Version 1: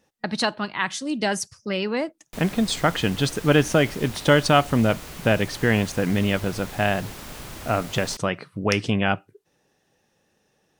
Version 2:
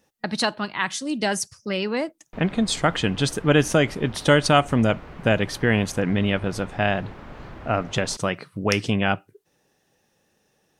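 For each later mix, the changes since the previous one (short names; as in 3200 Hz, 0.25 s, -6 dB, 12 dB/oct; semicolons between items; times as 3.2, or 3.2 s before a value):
speech: add high shelf 9400 Hz +6 dB; background: add LPF 1700 Hz 12 dB/oct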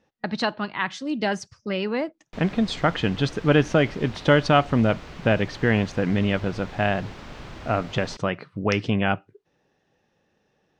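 background: remove LPF 1700 Hz 12 dB/oct; master: add air absorption 170 m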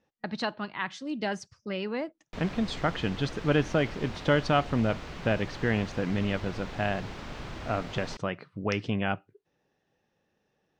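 speech -6.5 dB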